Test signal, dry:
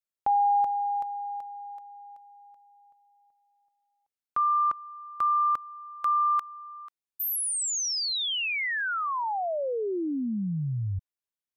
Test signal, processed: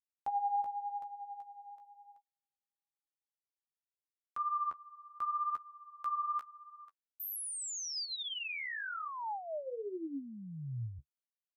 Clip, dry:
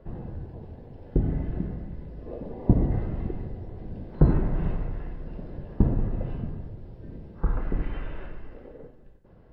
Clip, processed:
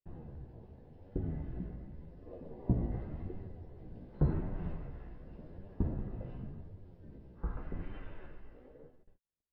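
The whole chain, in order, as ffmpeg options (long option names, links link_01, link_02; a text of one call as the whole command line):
ffmpeg -i in.wav -af "flanger=delay=9.9:depth=7.6:regen=23:speed=0.88:shape=triangular,agate=range=-39dB:threshold=-49dB:ratio=16:release=310:detection=rms,volume=-7.5dB" out.wav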